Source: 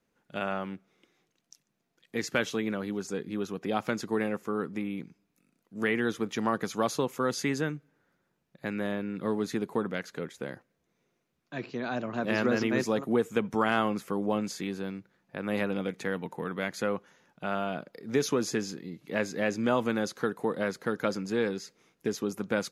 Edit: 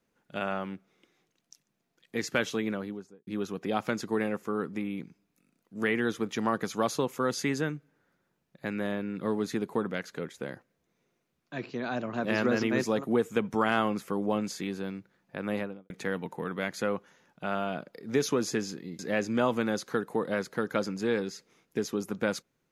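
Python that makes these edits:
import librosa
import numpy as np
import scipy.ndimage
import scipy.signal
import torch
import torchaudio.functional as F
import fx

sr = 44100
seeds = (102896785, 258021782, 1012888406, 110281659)

y = fx.studio_fade_out(x, sr, start_s=2.66, length_s=0.61)
y = fx.studio_fade_out(y, sr, start_s=15.44, length_s=0.46)
y = fx.edit(y, sr, fx.cut(start_s=18.99, length_s=0.29), tone=tone)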